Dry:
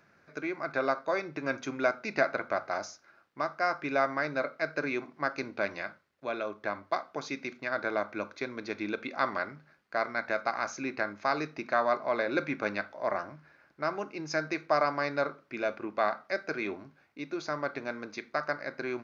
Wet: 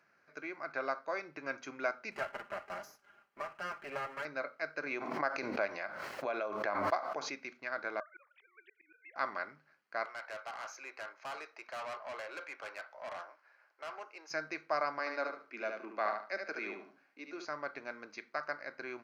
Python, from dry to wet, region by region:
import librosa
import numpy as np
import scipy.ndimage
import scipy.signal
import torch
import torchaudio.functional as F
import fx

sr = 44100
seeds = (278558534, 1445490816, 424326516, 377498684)

y = fx.chain(x, sr, fx.lower_of_two(delay_ms=5.0),
    fx.peak_eq(hz=4600.0, db=-6.5, octaves=1.8),
    fx.band_squash(depth_pct=40), at=(2.11, 4.25))
y = fx.chain(y, sr, fx.peak_eq(hz=680.0, db=6.0, octaves=1.2),
    fx.pre_swell(db_per_s=36.0), at=(4.86, 7.4))
y = fx.chain(y, sr, fx.sine_speech(),
    fx.highpass(hz=880.0, slope=12),
    fx.auto_swell(attack_ms=276.0), at=(8.0, 9.16))
y = fx.chain(y, sr, fx.highpass(hz=450.0, slope=24),
    fx.peak_eq(hz=910.0, db=3.0, octaves=0.99),
    fx.tube_stage(drive_db=32.0, bias=0.25), at=(10.05, 14.31))
y = fx.chain(y, sr, fx.steep_highpass(hz=170.0, slope=72),
    fx.echo_feedback(ms=73, feedback_pct=25, wet_db=-5.0), at=(14.99, 17.45))
y = fx.highpass(y, sr, hz=1400.0, slope=6)
y = fx.tilt_eq(y, sr, slope=-2.0)
y = fx.notch(y, sr, hz=3600.0, q=8.7)
y = y * librosa.db_to_amplitude(-1.5)